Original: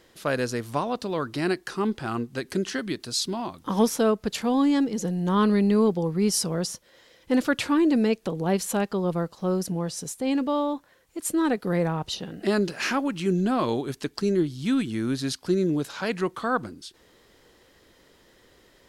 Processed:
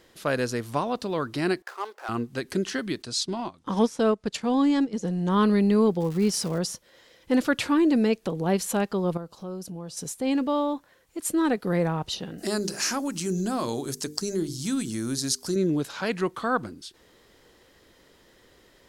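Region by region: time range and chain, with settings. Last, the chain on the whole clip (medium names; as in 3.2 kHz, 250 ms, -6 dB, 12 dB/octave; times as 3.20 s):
1.62–2.09 s: median filter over 15 samples + inverse Chebyshev high-pass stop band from 160 Hz, stop band 60 dB
3.02–5.32 s: low-pass 9.5 kHz 24 dB/octave + transient shaper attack -2 dB, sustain -10 dB
6.00–6.57 s: treble shelf 8.1 kHz -8.5 dB + crackle 490 per s -34 dBFS
9.17–9.97 s: peaking EQ 1.9 kHz -10 dB 0.33 oct + compression 2:1, threshold -41 dBFS
12.38–15.56 s: resonant high shelf 4.3 kHz +12 dB, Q 1.5 + hum notches 50/100/150/200/250/300/350/400/450 Hz + compression 1.5:1, threshold -29 dBFS
whole clip: none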